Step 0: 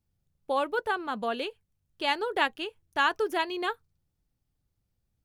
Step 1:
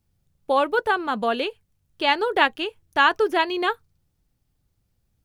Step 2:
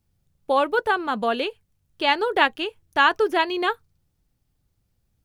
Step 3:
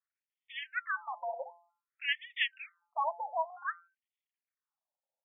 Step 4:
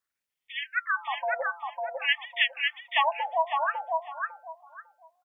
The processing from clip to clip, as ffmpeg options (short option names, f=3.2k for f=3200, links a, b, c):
-filter_complex "[0:a]acrossover=split=5100[a][b];[b]acompressor=threshold=-55dB:ratio=4:attack=1:release=60[c];[a][c]amix=inputs=2:normalize=0,volume=7.5dB"
-af anull
-af "aeval=exprs='max(val(0),0)':c=same,bandreject=f=172:t=h:w=4,bandreject=f=344:t=h:w=4,bandreject=f=516:t=h:w=4,bandreject=f=688:t=h:w=4,bandreject=f=860:t=h:w=4,bandreject=f=1.032k:t=h:w=4,bandreject=f=1.204k:t=h:w=4,bandreject=f=1.376k:t=h:w=4,bandreject=f=1.548k:t=h:w=4,afftfilt=real='re*between(b*sr/1024,690*pow(2600/690,0.5+0.5*sin(2*PI*0.54*pts/sr))/1.41,690*pow(2600/690,0.5+0.5*sin(2*PI*0.54*pts/sr))*1.41)':imag='im*between(b*sr/1024,690*pow(2600/690,0.5+0.5*sin(2*PI*0.54*pts/sr))/1.41,690*pow(2600/690,0.5+0.5*sin(2*PI*0.54*pts/sr))*1.41)':win_size=1024:overlap=0.75,volume=-4.5dB"
-af "aecho=1:1:551|1102|1653:0.708|0.149|0.0312,volume=7dB"